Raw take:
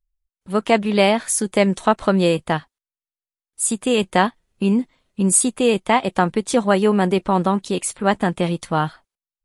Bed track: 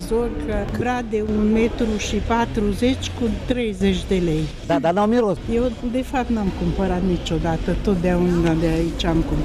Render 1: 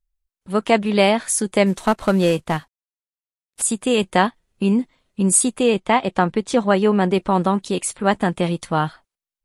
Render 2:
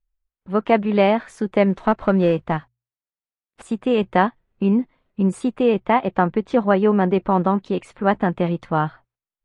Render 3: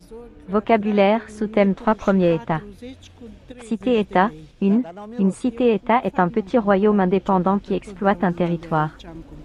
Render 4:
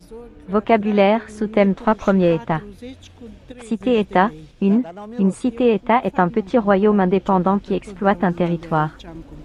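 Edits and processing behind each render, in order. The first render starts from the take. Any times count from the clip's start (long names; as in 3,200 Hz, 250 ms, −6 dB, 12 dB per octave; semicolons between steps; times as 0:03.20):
0:01.66–0:03.62: variable-slope delta modulation 64 kbit/s; 0:05.63–0:07.14: high-frequency loss of the air 53 metres
low-pass filter 2,000 Hz 12 dB per octave; mains-hum notches 60/120 Hz
mix in bed track −18.5 dB
level +1.5 dB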